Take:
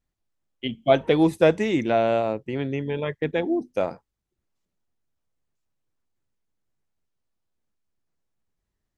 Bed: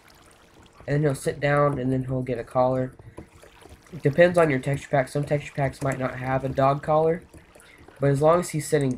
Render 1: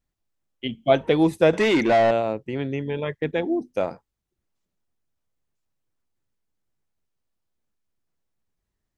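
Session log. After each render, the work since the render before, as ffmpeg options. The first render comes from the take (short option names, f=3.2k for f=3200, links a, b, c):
-filter_complex "[0:a]asettb=1/sr,asplit=3[a][b][c];[a]atrim=end=1.534[d];[b]atrim=start=1.53:end=2.11,asetpts=PTS-STARTPTS,afade=t=in:d=0.004:c=qsin,afade=t=out:st=0.576:d=0.004:c=qsin,asplit=2[e][f];[f]highpass=f=720:p=1,volume=21dB,asoftclip=type=tanh:threshold=-11dB[g];[e][g]amix=inputs=2:normalize=0,lowpass=f=3k:p=1,volume=-6dB[h];[c]atrim=start=2.106[i];[d][h]acrossfade=d=0.004:c1=hsin:c2=qsin[j];[j][i]acrossfade=d=0.004:c1=qsin:c2=hsin"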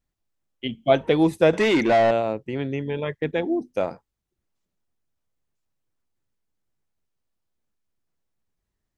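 -af anull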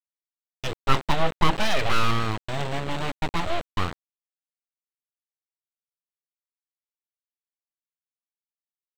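-af "aresample=8000,acrusher=bits=4:mix=0:aa=0.000001,aresample=44100,aeval=exprs='abs(val(0))':c=same"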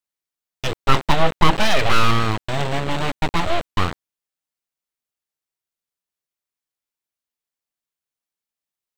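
-af "volume=6dB,alimiter=limit=-1dB:level=0:latency=1"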